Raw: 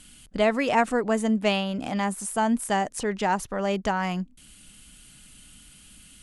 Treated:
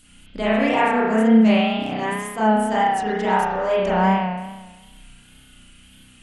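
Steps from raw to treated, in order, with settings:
spring reverb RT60 1.2 s, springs 32 ms, chirp 80 ms, DRR −9.5 dB
tape wow and flutter 55 cents
level −5 dB

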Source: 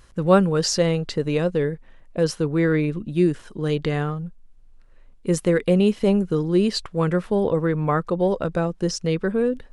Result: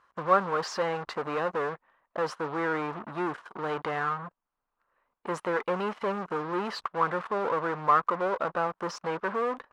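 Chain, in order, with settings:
in parallel at −7 dB: fuzz pedal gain 35 dB, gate −39 dBFS
on the sum: resonant band-pass 1,100 Hz, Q 2.5

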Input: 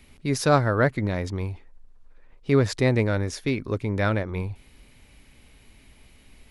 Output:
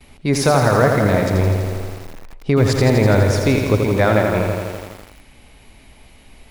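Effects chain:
parametric band 760 Hz +6.5 dB 0.94 octaves
echo through a band-pass that steps 110 ms, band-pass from 3,300 Hz, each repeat −1.4 octaves, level −11 dB
noise gate with hold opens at −46 dBFS
0:01.34–0:03.82: low-shelf EQ 130 Hz +7 dB
brickwall limiter −12 dBFS, peak gain reduction 9.5 dB
feedback echo at a low word length 83 ms, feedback 80%, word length 7 bits, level −5.5 dB
level +6.5 dB

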